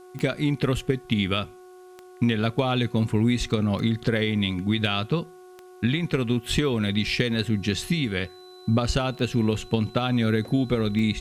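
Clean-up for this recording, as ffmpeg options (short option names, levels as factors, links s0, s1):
-af "adeclick=t=4,bandreject=f=366.3:t=h:w=4,bandreject=f=732.6:t=h:w=4,bandreject=f=1098.9:t=h:w=4,bandreject=f=1465.2:t=h:w=4,bandreject=f=4000:w=30,agate=range=0.0891:threshold=0.0112"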